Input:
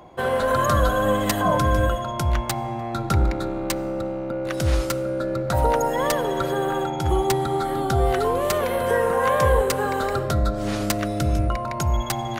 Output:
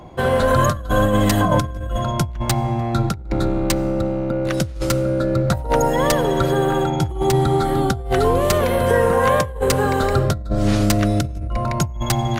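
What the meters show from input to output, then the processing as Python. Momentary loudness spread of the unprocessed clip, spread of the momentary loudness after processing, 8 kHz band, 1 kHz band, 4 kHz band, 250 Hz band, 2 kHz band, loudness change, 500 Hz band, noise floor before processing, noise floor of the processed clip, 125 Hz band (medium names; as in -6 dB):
7 LU, 6 LU, +4.0 dB, +2.0 dB, +4.0 dB, +6.0 dB, +2.5 dB, +3.5 dB, +3.5 dB, -29 dBFS, -29 dBFS, +5.5 dB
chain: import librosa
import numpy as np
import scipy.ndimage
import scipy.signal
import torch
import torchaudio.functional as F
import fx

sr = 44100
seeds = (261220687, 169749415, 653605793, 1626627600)

y = fx.low_shelf(x, sr, hz=270.0, db=11.5)
y = fx.over_compress(y, sr, threshold_db=-16.0, ratio=-0.5)
y = fx.peak_eq(y, sr, hz=5200.0, db=3.5, octaves=2.7)
y = F.gain(torch.from_numpy(y), -1.0).numpy()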